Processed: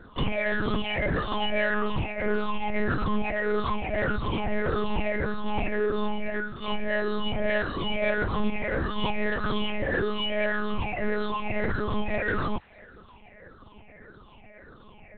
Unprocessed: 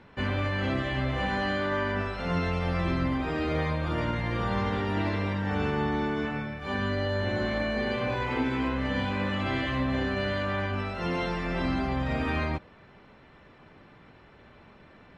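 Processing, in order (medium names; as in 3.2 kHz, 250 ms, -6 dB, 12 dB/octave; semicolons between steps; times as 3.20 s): drifting ripple filter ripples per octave 0.58, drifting -1.7 Hz, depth 24 dB; reverb removal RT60 0.64 s; saturation -18.5 dBFS, distortion -17 dB; feedback echo behind a high-pass 166 ms, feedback 64%, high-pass 2 kHz, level -23 dB; monotone LPC vocoder at 8 kHz 210 Hz; 1.70–2.59 s: loudspeaker Doppler distortion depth 0.28 ms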